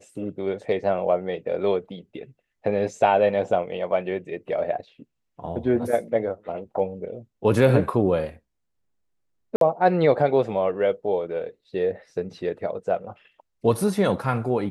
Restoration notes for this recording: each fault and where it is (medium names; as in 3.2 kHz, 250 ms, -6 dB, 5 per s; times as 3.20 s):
9.56–9.61 s: dropout 52 ms